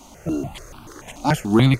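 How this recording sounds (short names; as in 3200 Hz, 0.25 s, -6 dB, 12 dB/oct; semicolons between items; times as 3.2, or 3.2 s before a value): notches that jump at a steady rate 6.9 Hz 450–1900 Hz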